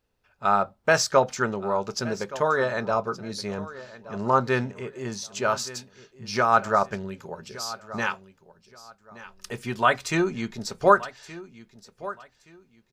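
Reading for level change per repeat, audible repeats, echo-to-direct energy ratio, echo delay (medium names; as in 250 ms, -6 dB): -12.0 dB, 2, -17.0 dB, 1172 ms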